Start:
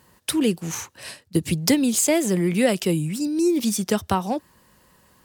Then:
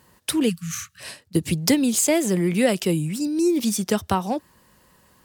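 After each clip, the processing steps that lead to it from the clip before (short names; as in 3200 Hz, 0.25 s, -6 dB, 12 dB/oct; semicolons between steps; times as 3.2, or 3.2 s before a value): spectral delete 0.49–1.01, 210–1100 Hz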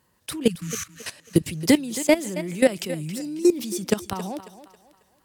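level quantiser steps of 18 dB; thinning echo 0.272 s, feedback 38%, high-pass 280 Hz, level -13 dB; gain +5 dB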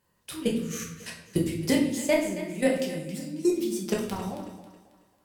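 shoebox room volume 170 m³, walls mixed, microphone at 1.2 m; gain -8.5 dB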